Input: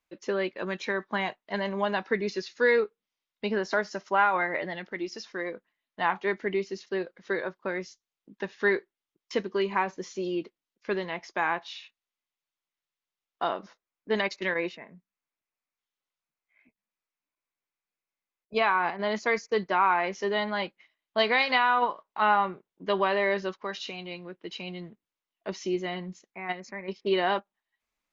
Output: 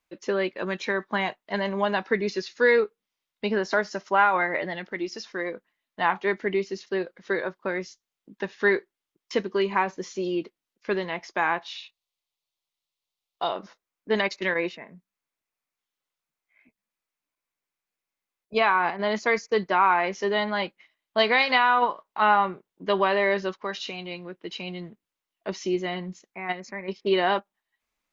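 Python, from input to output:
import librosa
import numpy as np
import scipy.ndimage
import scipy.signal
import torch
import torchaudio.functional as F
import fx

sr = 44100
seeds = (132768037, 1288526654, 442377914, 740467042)

y = fx.graphic_eq_15(x, sr, hz=(250, 1600, 4000), db=(-11, -10, 6), at=(11.78, 13.56))
y = y * librosa.db_to_amplitude(3.0)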